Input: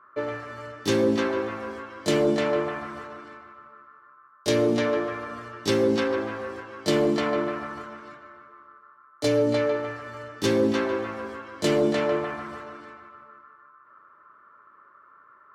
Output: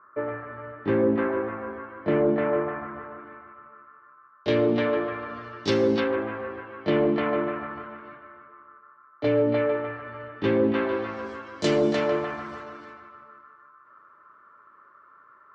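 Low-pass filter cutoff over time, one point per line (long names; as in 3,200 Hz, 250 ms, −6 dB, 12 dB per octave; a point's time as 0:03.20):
low-pass filter 24 dB per octave
0:03.16 2,000 Hz
0:04.54 3,500 Hz
0:05.18 3,500 Hz
0:05.87 6,300 Hz
0:06.14 2,800 Hz
0:10.73 2,800 Hz
0:11.26 6,900 Hz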